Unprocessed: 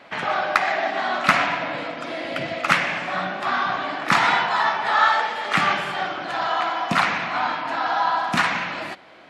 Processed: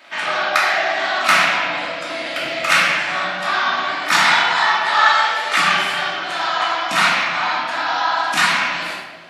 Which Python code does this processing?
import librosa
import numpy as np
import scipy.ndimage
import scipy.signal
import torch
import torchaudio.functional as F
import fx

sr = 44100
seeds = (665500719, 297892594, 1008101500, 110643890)

y = fx.tilt_eq(x, sr, slope=3.5)
y = fx.hum_notches(y, sr, base_hz=50, count=3)
y = fx.room_shoebox(y, sr, seeds[0], volume_m3=550.0, walls='mixed', distance_m=2.7)
y = y * librosa.db_to_amplitude(-3.5)